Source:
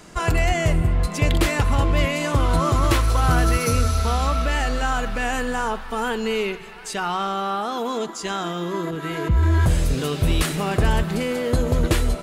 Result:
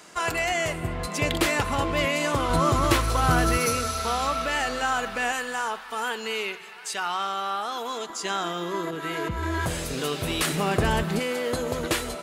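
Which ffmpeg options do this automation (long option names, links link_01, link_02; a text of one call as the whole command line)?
ffmpeg -i in.wav -af "asetnsamples=nb_out_samples=441:pad=0,asendcmd='0.83 highpass f 300;2.5 highpass f 130;3.66 highpass f 450;5.32 highpass f 1100;8.1 highpass f 420;10.47 highpass f 150;11.19 highpass f 530',highpass=frequency=670:poles=1" out.wav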